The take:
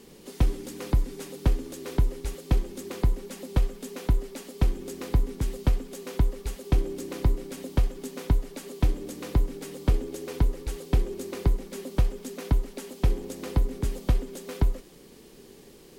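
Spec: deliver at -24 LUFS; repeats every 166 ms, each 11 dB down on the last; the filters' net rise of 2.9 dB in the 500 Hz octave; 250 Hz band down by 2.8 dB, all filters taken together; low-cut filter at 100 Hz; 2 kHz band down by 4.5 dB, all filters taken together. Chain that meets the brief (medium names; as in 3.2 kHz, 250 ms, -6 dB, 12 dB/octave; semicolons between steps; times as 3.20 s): high-pass 100 Hz; peaking EQ 250 Hz -5.5 dB; peaking EQ 500 Hz +6 dB; peaking EQ 2 kHz -6 dB; feedback delay 166 ms, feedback 28%, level -11 dB; trim +10 dB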